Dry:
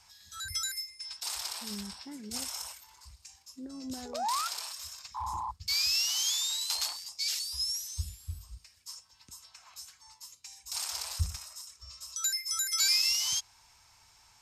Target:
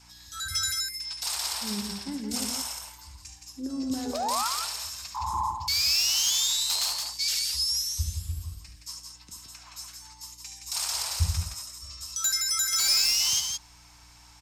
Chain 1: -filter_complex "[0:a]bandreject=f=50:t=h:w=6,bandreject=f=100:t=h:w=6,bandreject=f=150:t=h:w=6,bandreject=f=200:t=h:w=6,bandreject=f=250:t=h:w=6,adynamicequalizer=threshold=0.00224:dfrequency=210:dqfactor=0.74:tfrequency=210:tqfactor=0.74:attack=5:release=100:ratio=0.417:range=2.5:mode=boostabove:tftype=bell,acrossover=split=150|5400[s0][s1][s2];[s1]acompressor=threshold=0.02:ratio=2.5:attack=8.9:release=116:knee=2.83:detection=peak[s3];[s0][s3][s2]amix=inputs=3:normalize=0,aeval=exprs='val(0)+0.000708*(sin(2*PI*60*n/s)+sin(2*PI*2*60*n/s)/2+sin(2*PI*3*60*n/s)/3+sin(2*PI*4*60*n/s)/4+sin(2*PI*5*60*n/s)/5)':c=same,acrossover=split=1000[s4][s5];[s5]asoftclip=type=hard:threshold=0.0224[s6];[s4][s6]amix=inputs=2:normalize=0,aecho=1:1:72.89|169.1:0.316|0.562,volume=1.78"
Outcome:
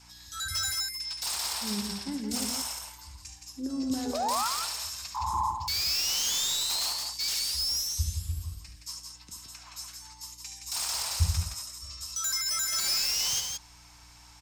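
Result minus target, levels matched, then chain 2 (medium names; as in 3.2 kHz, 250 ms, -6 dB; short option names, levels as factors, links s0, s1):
hard clipper: distortion +10 dB
-filter_complex "[0:a]bandreject=f=50:t=h:w=6,bandreject=f=100:t=h:w=6,bandreject=f=150:t=h:w=6,bandreject=f=200:t=h:w=6,bandreject=f=250:t=h:w=6,adynamicequalizer=threshold=0.00224:dfrequency=210:dqfactor=0.74:tfrequency=210:tqfactor=0.74:attack=5:release=100:ratio=0.417:range=2.5:mode=boostabove:tftype=bell,acrossover=split=150|5400[s0][s1][s2];[s1]acompressor=threshold=0.02:ratio=2.5:attack=8.9:release=116:knee=2.83:detection=peak[s3];[s0][s3][s2]amix=inputs=3:normalize=0,aeval=exprs='val(0)+0.000708*(sin(2*PI*60*n/s)+sin(2*PI*2*60*n/s)/2+sin(2*PI*3*60*n/s)/3+sin(2*PI*4*60*n/s)/4+sin(2*PI*5*60*n/s)/5)':c=same,acrossover=split=1000[s4][s5];[s5]asoftclip=type=hard:threshold=0.0531[s6];[s4][s6]amix=inputs=2:normalize=0,aecho=1:1:72.89|169.1:0.316|0.562,volume=1.78"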